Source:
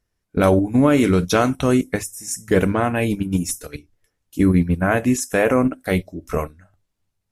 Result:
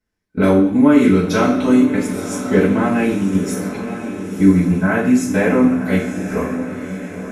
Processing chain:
feedback delay with all-pass diffusion 988 ms, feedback 53%, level −10 dB
convolution reverb RT60 0.65 s, pre-delay 3 ms, DRR −9.5 dB
level −11.5 dB

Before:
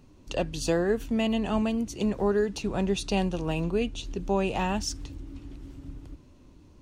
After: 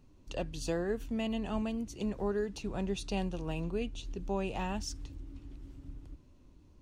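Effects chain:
low-shelf EQ 73 Hz +6.5 dB
level −8.5 dB

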